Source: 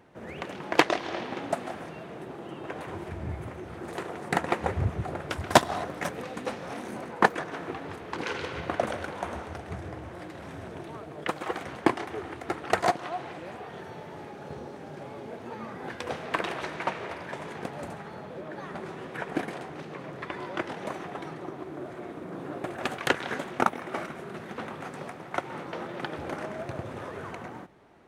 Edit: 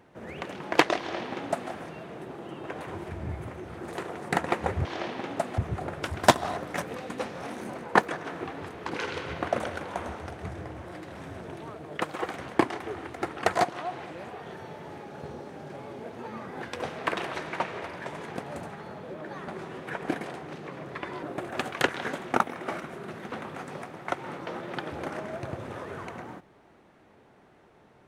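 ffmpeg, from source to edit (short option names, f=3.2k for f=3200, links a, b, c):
-filter_complex "[0:a]asplit=4[a][b][c][d];[a]atrim=end=4.852[e];[b]atrim=start=0.978:end=1.712[f];[c]atrim=start=4.848:end=20.502[g];[d]atrim=start=22.488[h];[e][f]acrossfade=d=0.004:c1=hsin:c2=hsin[i];[i][g]acrossfade=d=0.004:c1=hsin:c2=hsin[j];[j][h]acrossfade=d=0.004:c1=hsin:c2=hsin"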